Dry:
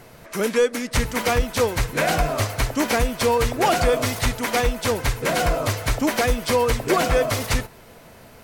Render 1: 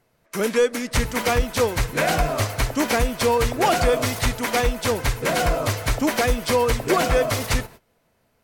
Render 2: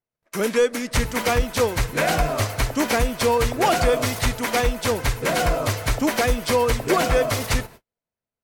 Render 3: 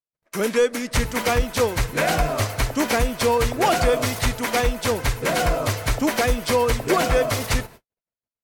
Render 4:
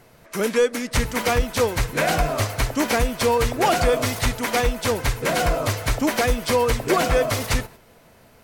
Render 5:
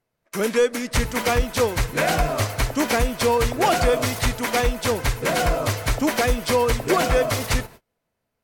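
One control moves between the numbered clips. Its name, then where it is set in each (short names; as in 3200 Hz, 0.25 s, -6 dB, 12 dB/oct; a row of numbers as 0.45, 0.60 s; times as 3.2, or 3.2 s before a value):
gate, range: -20, -46, -60, -6, -32 dB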